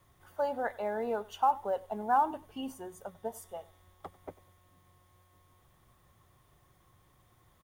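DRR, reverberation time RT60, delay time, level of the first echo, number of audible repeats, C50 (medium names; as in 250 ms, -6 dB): no reverb, no reverb, 95 ms, -21.5 dB, 1, no reverb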